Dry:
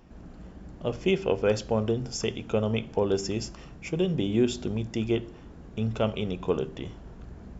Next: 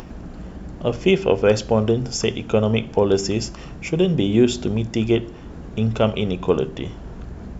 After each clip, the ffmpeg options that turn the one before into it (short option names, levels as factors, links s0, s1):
-af "acompressor=mode=upward:threshold=0.0141:ratio=2.5,volume=2.51"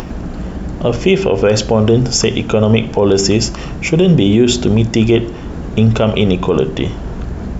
-af "alimiter=level_in=4.22:limit=0.891:release=50:level=0:latency=1,volume=0.891"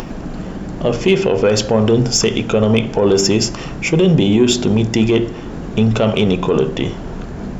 -af "equalizer=f=64:w=1.9:g=-12,asoftclip=type=tanh:threshold=0.794,bandreject=f=58.61:t=h:w=4,bandreject=f=117.22:t=h:w=4,bandreject=f=175.83:t=h:w=4,bandreject=f=234.44:t=h:w=4,bandreject=f=293.05:t=h:w=4,bandreject=f=351.66:t=h:w=4,bandreject=f=410.27:t=h:w=4,bandreject=f=468.88:t=h:w=4,bandreject=f=527.49:t=h:w=4,bandreject=f=586.1:t=h:w=4,bandreject=f=644.71:t=h:w=4,bandreject=f=703.32:t=h:w=4,bandreject=f=761.93:t=h:w=4,bandreject=f=820.54:t=h:w=4,bandreject=f=879.15:t=h:w=4,bandreject=f=937.76:t=h:w=4,bandreject=f=996.37:t=h:w=4,bandreject=f=1054.98:t=h:w=4,bandreject=f=1113.59:t=h:w=4,bandreject=f=1172.2:t=h:w=4,bandreject=f=1230.81:t=h:w=4,bandreject=f=1289.42:t=h:w=4,bandreject=f=1348.03:t=h:w=4,bandreject=f=1406.64:t=h:w=4,bandreject=f=1465.25:t=h:w=4,bandreject=f=1523.86:t=h:w=4,bandreject=f=1582.47:t=h:w=4,bandreject=f=1641.08:t=h:w=4,bandreject=f=1699.69:t=h:w=4,bandreject=f=1758.3:t=h:w=4,bandreject=f=1816.91:t=h:w=4,bandreject=f=1875.52:t=h:w=4,bandreject=f=1934.13:t=h:w=4,bandreject=f=1992.74:t=h:w=4,bandreject=f=2051.35:t=h:w=4,bandreject=f=2109.96:t=h:w=4"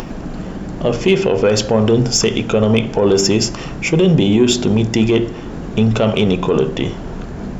-af anull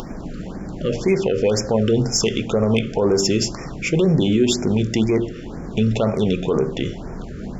-af "afftfilt=real='re*(1-between(b*sr/1024,810*pow(3600/810,0.5+0.5*sin(2*PI*2*pts/sr))/1.41,810*pow(3600/810,0.5+0.5*sin(2*PI*2*pts/sr))*1.41))':imag='im*(1-between(b*sr/1024,810*pow(3600/810,0.5+0.5*sin(2*PI*2*pts/sr))/1.41,810*pow(3600/810,0.5+0.5*sin(2*PI*2*pts/sr))*1.41))':win_size=1024:overlap=0.75,volume=0.596"